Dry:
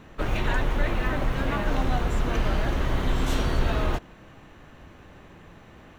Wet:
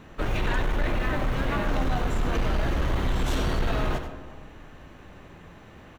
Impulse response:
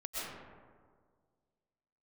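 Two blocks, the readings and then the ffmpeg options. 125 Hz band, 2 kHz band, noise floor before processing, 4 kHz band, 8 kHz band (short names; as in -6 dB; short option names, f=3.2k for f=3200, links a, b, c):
-0.5 dB, -0.5 dB, -50 dBFS, -0.5 dB, -0.5 dB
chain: -filter_complex "[0:a]aecho=1:1:94:0.299,asplit=2[a][b];[1:a]atrim=start_sample=2205[c];[b][c]afir=irnorm=-1:irlink=0,volume=-16dB[d];[a][d]amix=inputs=2:normalize=0,aeval=exprs='0.299*sin(PI/2*1.58*val(0)/0.299)':c=same,volume=-8dB"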